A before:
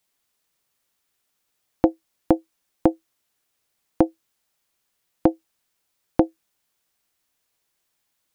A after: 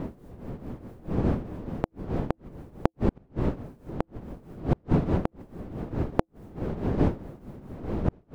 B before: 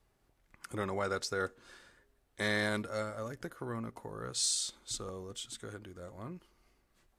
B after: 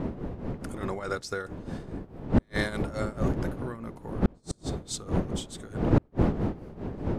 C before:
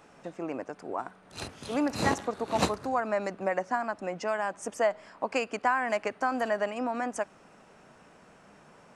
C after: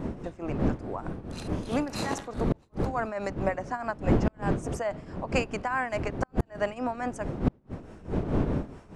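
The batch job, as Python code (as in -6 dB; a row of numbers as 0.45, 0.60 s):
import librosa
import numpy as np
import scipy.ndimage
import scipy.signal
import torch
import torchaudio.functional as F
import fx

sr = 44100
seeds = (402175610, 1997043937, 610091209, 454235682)

y = fx.dmg_wind(x, sr, seeds[0], corner_hz=290.0, level_db=-27.0)
y = fx.tremolo_shape(y, sr, shape='triangle', hz=4.7, depth_pct=75)
y = fx.gate_flip(y, sr, shuts_db=-14.0, range_db=-41)
y = y * 10.0 ** (-30 / 20.0) / np.sqrt(np.mean(np.square(y)))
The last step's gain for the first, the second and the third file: +4.5, +5.0, +2.5 dB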